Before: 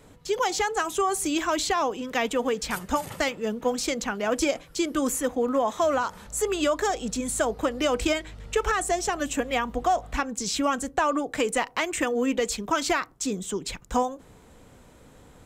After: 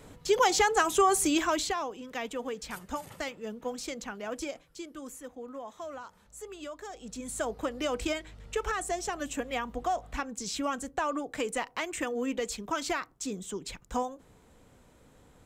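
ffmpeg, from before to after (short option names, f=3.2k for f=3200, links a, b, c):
-af "volume=12dB,afade=t=out:st=1.17:d=0.68:silence=0.266073,afade=t=out:st=4.14:d=0.81:silence=0.421697,afade=t=in:st=6.89:d=0.59:silence=0.298538"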